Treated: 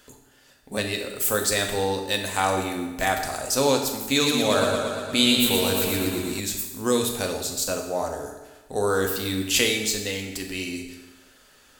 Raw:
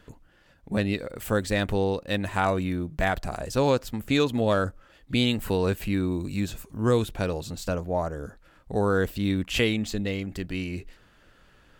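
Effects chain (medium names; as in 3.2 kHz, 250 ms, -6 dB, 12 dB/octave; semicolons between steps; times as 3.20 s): tone controls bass -10 dB, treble +15 dB; reverberation RT60 1.2 s, pre-delay 4 ms, DRR 2 dB; 4.10–6.40 s: modulated delay 118 ms, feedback 68%, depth 54 cents, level -4.5 dB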